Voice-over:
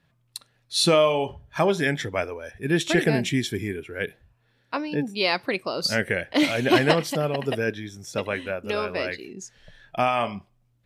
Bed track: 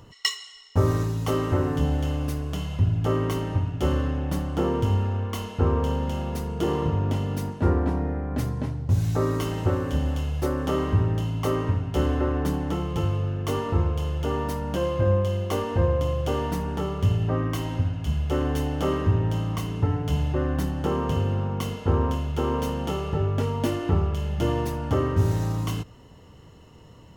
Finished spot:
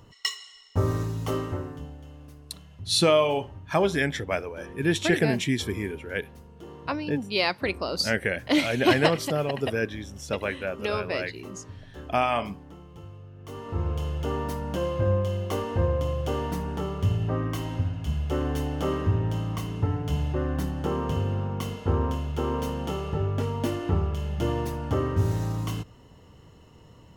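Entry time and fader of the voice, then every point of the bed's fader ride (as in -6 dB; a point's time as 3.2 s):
2.15 s, -1.5 dB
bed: 1.36 s -3.5 dB
1.96 s -19 dB
13.31 s -19 dB
13.92 s -2.5 dB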